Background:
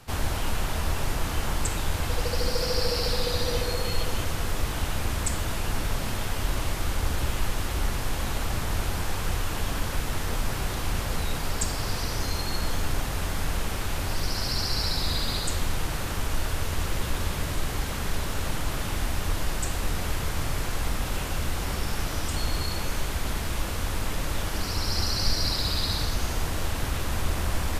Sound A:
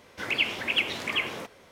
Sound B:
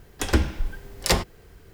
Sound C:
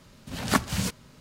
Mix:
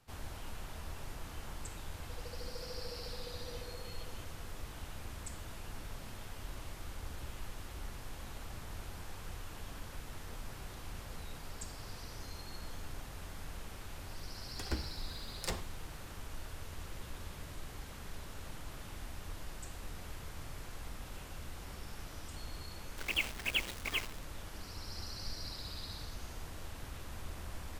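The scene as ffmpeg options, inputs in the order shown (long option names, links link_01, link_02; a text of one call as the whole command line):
ffmpeg -i bed.wav -i cue0.wav -i cue1.wav -filter_complex "[0:a]volume=-17.5dB[link_01];[1:a]aeval=exprs='val(0)*gte(abs(val(0)),0.0355)':channel_layout=same[link_02];[2:a]atrim=end=1.73,asetpts=PTS-STARTPTS,volume=-17.5dB,afade=type=in:duration=0.004:curve=hsin,afade=type=out:start_time=1.726:duration=0.004:curve=hsin,adelay=14380[link_03];[link_02]atrim=end=1.71,asetpts=PTS-STARTPTS,volume=-8dB,afade=type=in:duration=0.004:curve=hsin,afade=type=out:start_time=1.706:duration=0.004:curve=hsin,adelay=22780[link_04];[link_01][link_03][link_04]amix=inputs=3:normalize=0" out.wav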